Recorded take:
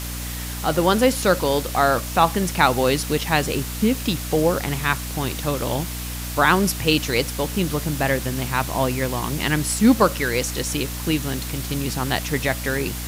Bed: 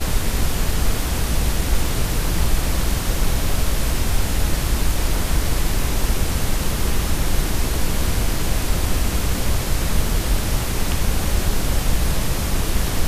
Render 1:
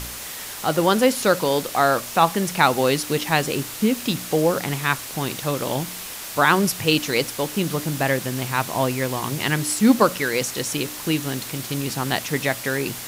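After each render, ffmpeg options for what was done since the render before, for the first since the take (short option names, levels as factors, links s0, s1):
-af "bandreject=f=60:t=h:w=4,bandreject=f=120:t=h:w=4,bandreject=f=180:t=h:w=4,bandreject=f=240:t=h:w=4,bandreject=f=300:t=h:w=4"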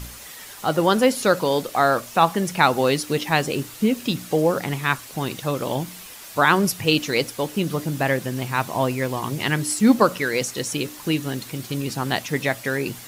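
-af "afftdn=nr=8:nf=-34"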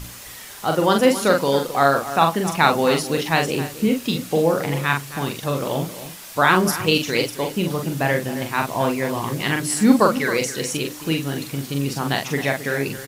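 -filter_complex "[0:a]asplit=2[s0][s1];[s1]adelay=43,volume=0.596[s2];[s0][s2]amix=inputs=2:normalize=0,asplit=2[s3][s4];[s4]adelay=268.2,volume=0.224,highshelf=f=4000:g=-6.04[s5];[s3][s5]amix=inputs=2:normalize=0"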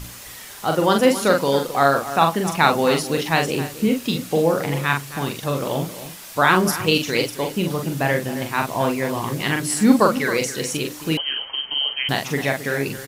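-filter_complex "[0:a]asettb=1/sr,asplit=3[s0][s1][s2];[s0]atrim=end=11.174[s3];[s1]atrim=start=11.17:end=12.09,asetpts=PTS-STARTPTS,afade=t=in:d=0.004:c=qsin,afade=t=out:st=0.916:d=0.004:c=qsin,lowpass=f=2800:t=q:w=0.5098,lowpass=f=2800:t=q:w=0.6013,lowpass=f=2800:t=q:w=0.9,lowpass=f=2800:t=q:w=2.563,afreqshift=-3300[s4];[s2]atrim=start=12.086[s5];[s3][s4]acrossfade=d=0.004:c1=hsin:c2=qsin[s6];[s6][s5]acrossfade=d=0.004:c1=qsin:c2=hsin"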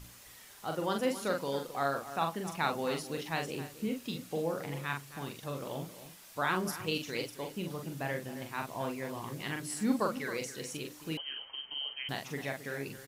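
-af "volume=0.168"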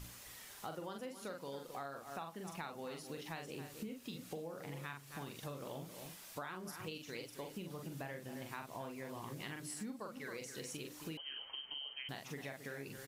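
-af "acompressor=threshold=0.00794:ratio=12"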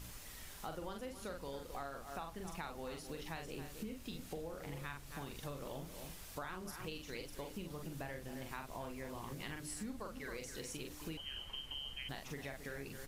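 -filter_complex "[1:a]volume=0.015[s0];[0:a][s0]amix=inputs=2:normalize=0"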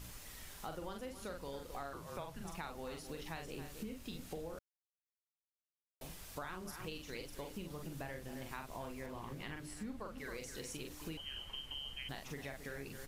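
-filter_complex "[0:a]asettb=1/sr,asplit=3[s0][s1][s2];[s0]atrim=end=1.934[s3];[s1]atrim=start=1.93:end=2.45,asetpts=PTS-STARTPTS,afade=t=in:d=0.004:c=qsin,afade=t=out:st=0.516:d=0.004:c=qsin,afreqshift=-180[s4];[s2]atrim=start=2.446[s5];[s3][s4]acrossfade=d=0.004:c1=hsin:c2=qsin[s6];[s6][s5]acrossfade=d=0.004:c1=qsin:c2=hsin,asettb=1/sr,asplit=3[s7][s8][s9];[s7]atrim=end=9.064[s10];[s8]atrim=start=9.06:end=10.18,asetpts=PTS-STARTPTS,afade=t=in:d=0.004:c=qsin,afade=t=out:st=1.116:d=0.004:c=qsin,bass=f=250:g=0,treble=f=4000:g=-7[s11];[s9]atrim=start=10.176[s12];[s10][s11]acrossfade=d=0.004:c1=hsin:c2=qsin[s13];[s13][s12]acrossfade=d=0.004:c1=qsin:c2=hsin,asplit=3[s14][s15][s16];[s14]atrim=end=4.59,asetpts=PTS-STARTPTS,afade=t=out:st=4.586:d=0.004:c=hsin[s17];[s15]atrim=start=4.59:end=6.01,asetpts=PTS-STARTPTS,volume=0[s18];[s16]atrim=start=6.01,asetpts=PTS-STARTPTS,afade=t=in:d=0.004:c=hsin[s19];[s17][s18][s19]concat=n=3:v=0:a=1"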